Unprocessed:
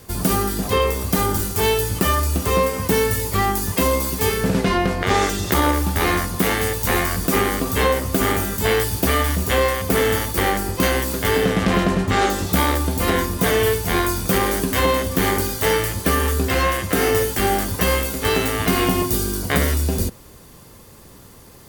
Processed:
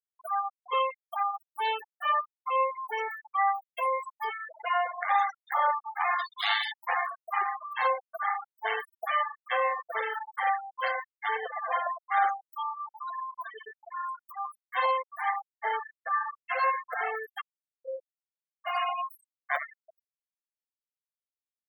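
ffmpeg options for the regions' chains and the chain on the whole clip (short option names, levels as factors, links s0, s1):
-filter_complex "[0:a]asettb=1/sr,asplit=3[s0][s1][s2];[s0]atrim=end=6.194[s3];[s1]atrim=start=6.19:end=6.72,asetpts=PTS-STARTPTS,afade=t=in:d=0.004:c=qsin,afade=t=out:st=0.526:d=0.004:c=qsin,highpass=380,equalizer=f=3700:w=1.7:g=14.5[s4];[s2]atrim=start=6.716[s5];[s3][s4]acrossfade=d=0.004:c1=hsin:c2=qsin[s6];[s6][s5]acrossfade=d=0.004:c1=qsin:c2=hsin,asettb=1/sr,asplit=3[s7][s8][s9];[s7]atrim=end=12.524[s10];[s8]atrim=start=12.52:end=14.71,asetpts=PTS-STARTPTS,afade=t=in:d=0.004:c=qsin,afade=t=out:st=2.186:d=0.004:c=qsin,bandreject=f=50:t=h:w=6,bandreject=f=100:t=h:w=6,bandreject=f=150:t=h:w=6,bandreject=f=200:t=h:w=6,bandreject=f=250:t=h:w=6,bandreject=f=300:t=h:w=6,acrossover=split=390|3000[s11][s12][s13];[s12]acompressor=threshold=0.0282:ratio=4:attack=3.2:release=140:knee=2.83:detection=peak[s14];[s11][s14][s13]amix=inputs=3:normalize=0,adynamicequalizer=threshold=0.00891:dfrequency=1200:dqfactor=1.3:tfrequency=1200:tqfactor=1.3:attack=5:release=100:ratio=0.375:range=2.5:mode=boostabove:tftype=bell[s15];[s9]atrim=start=14.706[s16];[s10][s15]acrossfade=d=0.004:c1=hsin:c2=qsin[s17];[s17][s16]acrossfade=d=0.004:c1=qsin:c2=hsin,asettb=1/sr,asplit=3[s18][s19][s20];[s18]atrim=end=15.434[s21];[s19]atrim=start=15.43:end=16.14,asetpts=PTS-STARTPTS,afade=t=in:d=0.004:c=qsin,afade=t=out:st=0.706:d=0.004:c=qsin,highpass=f=370:w=0.5412,highpass=f=370:w=1.3066,highshelf=f=4700:g=-11.5[s22];[s20]atrim=start=16.136[s23];[s21][s22]acrossfade=d=0.004:c1=hsin:c2=qsin[s24];[s24][s23]acrossfade=d=0.004:c1=qsin:c2=hsin,asettb=1/sr,asplit=3[s25][s26][s27];[s25]atrim=end=17.414[s28];[s26]atrim=start=17.41:end=18.65,asetpts=PTS-STARTPTS,afade=t=in:d=0.004:c=qsin,afade=t=out:st=1.236:d=0.004:c=qsin,asplit=3[s29][s30][s31];[s29]bandpass=f=530:t=q:w=8,volume=1[s32];[s30]bandpass=f=1840:t=q:w=8,volume=0.501[s33];[s31]bandpass=f=2480:t=q:w=8,volume=0.355[s34];[s32][s33][s34]amix=inputs=3:normalize=0,equalizer=f=3400:t=o:w=2.3:g=-12.5[s35];[s27]atrim=start=18.646[s36];[s28][s35]acrossfade=d=0.004:c1=hsin:c2=qsin[s37];[s37][s36]acrossfade=d=0.004:c1=qsin:c2=hsin,highpass=f=690:w=0.5412,highpass=f=690:w=1.3066,afftfilt=real='re*gte(hypot(re,im),0.158)':imag='im*gte(hypot(re,im),0.158)':win_size=1024:overlap=0.75,lowpass=f=1200:p=1"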